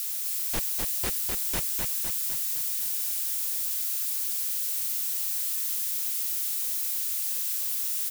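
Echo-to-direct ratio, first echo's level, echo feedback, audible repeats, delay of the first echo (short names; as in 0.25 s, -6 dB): -2.0 dB, -3.5 dB, 56%, 7, 0.254 s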